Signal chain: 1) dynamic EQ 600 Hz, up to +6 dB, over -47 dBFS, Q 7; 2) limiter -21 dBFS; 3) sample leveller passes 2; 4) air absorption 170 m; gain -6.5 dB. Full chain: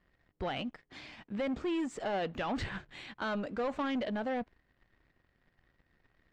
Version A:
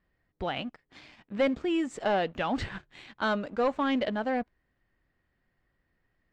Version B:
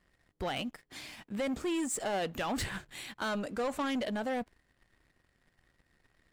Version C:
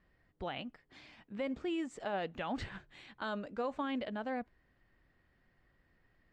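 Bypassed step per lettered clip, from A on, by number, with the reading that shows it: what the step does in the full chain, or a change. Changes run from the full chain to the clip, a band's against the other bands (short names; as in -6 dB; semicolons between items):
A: 2, crest factor change +4.5 dB; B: 4, 8 kHz band +15.5 dB; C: 3, crest factor change +3.5 dB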